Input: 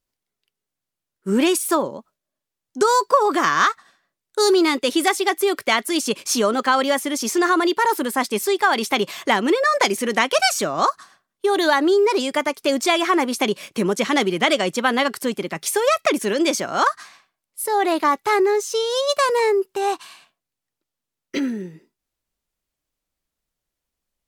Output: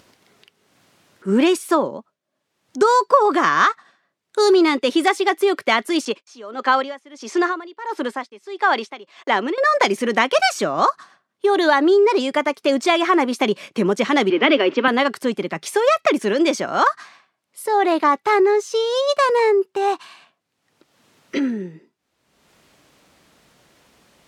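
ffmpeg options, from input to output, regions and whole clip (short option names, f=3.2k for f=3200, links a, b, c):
-filter_complex "[0:a]asettb=1/sr,asplit=3[a][b][c];[a]atrim=end=6.054[d];[b]atrim=start=6.05:end=9.58,asetpts=PTS-STARTPTS,afade=t=in:d=0.004:c=qsin,afade=t=out:st=3.526:d=0.004:c=qsin,agate=range=-33dB:threshold=-36dB:ratio=16:release=100:detection=peak,highpass=280,lowpass=7.1k,aeval=exprs='val(0)*pow(10,-21*(0.5-0.5*cos(2*PI*1.5*n/s))/20)':c=same[e];[c]atrim=start=9.576[f];[d][e]acrossfade=d=0.004:c1=hsin:c2=qsin[g];[g][f]acrossfade=d=0.004:c1=qsin:c2=hsin,asettb=1/sr,asplit=3[h][i][j];[h]atrim=end=14.304[k];[i]atrim=start=14.3:end=14.88,asetpts=PTS-STARTPTS,afade=t=in:d=0.004:c=qsin,afade=t=out:st=0.576:d=0.004:c=qsin,aeval=exprs='val(0)+0.5*0.0299*sgn(val(0))':c=same,highpass=f=270:w=0.5412,highpass=f=270:w=1.3066,equalizer=f=270:t=q:w=4:g=9,equalizer=f=410:t=q:w=4:g=6,equalizer=f=740:t=q:w=4:g=-7,equalizer=f=2.7k:t=q:w=4:g=5,equalizer=f=4k:t=q:w=4:g=-5,lowpass=f=4.3k:w=0.5412,lowpass=f=4.3k:w=1.3066[l];[j]atrim=start=14.876[m];[k][l]acrossfade=d=0.004:c1=hsin:c2=qsin[n];[n][m]acrossfade=d=0.004:c1=qsin:c2=hsin,highpass=130,aemphasis=mode=reproduction:type=50fm,acompressor=mode=upward:threshold=-34dB:ratio=2.5,volume=2dB"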